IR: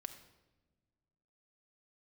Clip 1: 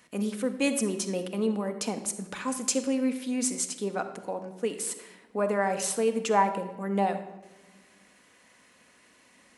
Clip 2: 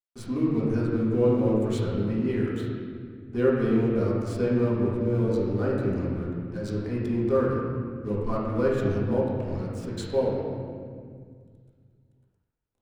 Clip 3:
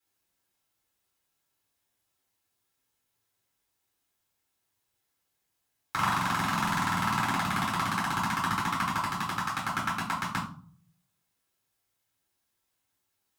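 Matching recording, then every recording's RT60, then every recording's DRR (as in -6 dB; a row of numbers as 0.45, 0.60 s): 1; not exponential, 2.0 s, 0.45 s; 6.5, -7.0, -5.5 dB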